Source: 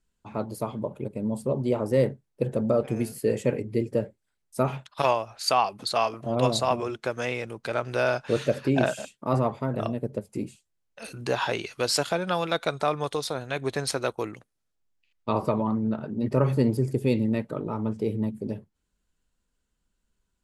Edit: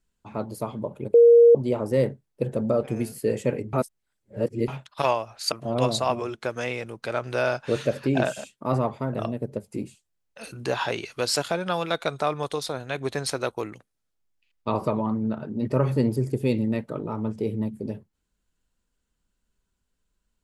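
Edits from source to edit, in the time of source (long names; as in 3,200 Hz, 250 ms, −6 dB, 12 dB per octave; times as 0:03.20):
0:01.14–0:01.55: beep over 470 Hz −9.5 dBFS
0:03.73–0:04.68: reverse
0:05.52–0:06.13: remove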